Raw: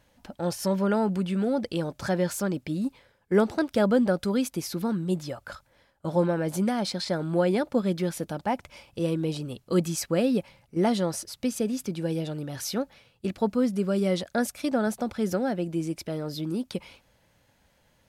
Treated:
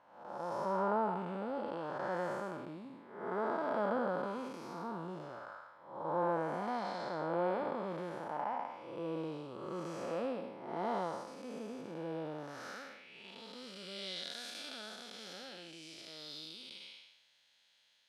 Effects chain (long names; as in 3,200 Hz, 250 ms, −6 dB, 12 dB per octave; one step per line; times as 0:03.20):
spectrum smeared in time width 301 ms
band-pass filter sweep 1,000 Hz → 3,700 Hz, 0:12.43–0:13.44
level +7 dB